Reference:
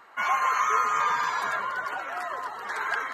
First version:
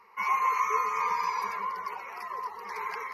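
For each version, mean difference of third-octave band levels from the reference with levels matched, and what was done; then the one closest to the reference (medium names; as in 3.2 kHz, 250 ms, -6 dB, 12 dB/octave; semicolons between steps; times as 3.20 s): 4.5 dB: rippled EQ curve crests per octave 0.84, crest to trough 17 dB; trim -8 dB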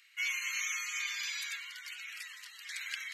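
15.5 dB: Chebyshev high-pass 2.3 kHz, order 4; trim +3 dB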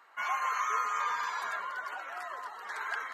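2.5 dB: high-pass 660 Hz 6 dB/octave; trim -6 dB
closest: third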